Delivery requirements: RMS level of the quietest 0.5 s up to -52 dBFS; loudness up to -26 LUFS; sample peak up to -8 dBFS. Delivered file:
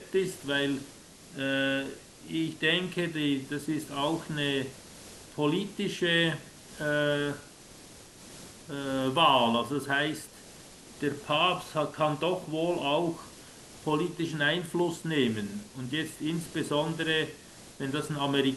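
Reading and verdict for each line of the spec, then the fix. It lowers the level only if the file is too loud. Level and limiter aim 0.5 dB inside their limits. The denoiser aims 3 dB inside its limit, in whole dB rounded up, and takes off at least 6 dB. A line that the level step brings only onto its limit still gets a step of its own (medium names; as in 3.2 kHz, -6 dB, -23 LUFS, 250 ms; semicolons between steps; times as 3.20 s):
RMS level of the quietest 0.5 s -50 dBFS: fail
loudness -29.5 LUFS: pass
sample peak -10.0 dBFS: pass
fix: noise reduction 6 dB, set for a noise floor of -50 dBFS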